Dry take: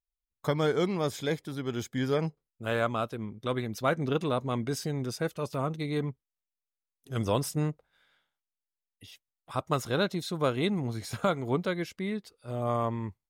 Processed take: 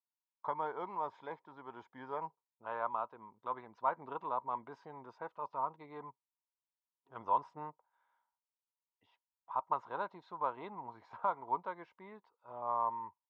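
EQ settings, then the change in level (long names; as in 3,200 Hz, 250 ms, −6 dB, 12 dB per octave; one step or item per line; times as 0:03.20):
resonant band-pass 950 Hz, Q 11
high-frequency loss of the air 170 metres
+9.5 dB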